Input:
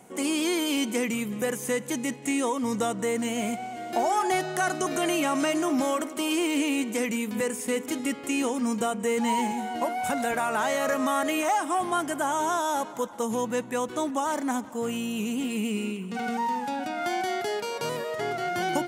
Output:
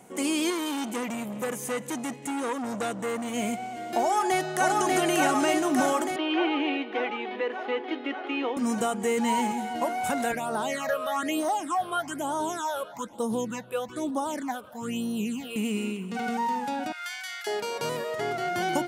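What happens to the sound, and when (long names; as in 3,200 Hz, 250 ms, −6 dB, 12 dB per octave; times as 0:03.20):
0:00.50–0:03.34: saturating transformer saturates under 1,300 Hz
0:04.01–0:04.74: delay throw 590 ms, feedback 75%, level −1.5 dB
0:06.16–0:08.57: elliptic band-pass filter 310–3,500 Hz
0:10.32–0:15.56: all-pass phaser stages 8, 1.1 Hz, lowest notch 250–2,400 Hz
0:16.92–0:17.47: high-pass filter 1,400 Hz 24 dB per octave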